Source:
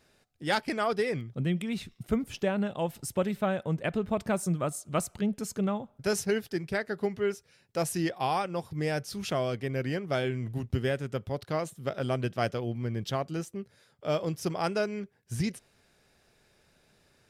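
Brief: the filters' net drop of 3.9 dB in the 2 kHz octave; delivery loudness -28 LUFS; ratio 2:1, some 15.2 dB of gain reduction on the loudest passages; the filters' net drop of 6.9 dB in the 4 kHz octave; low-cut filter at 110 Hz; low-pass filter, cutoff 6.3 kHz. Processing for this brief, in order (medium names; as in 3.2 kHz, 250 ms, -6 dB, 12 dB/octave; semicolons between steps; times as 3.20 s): high-pass 110 Hz; low-pass 6.3 kHz; peaking EQ 2 kHz -3.5 dB; peaking EQ 4 kHz -7.5 dB; compression 2:1, threshold -53 dBFS; trim +18.5 dB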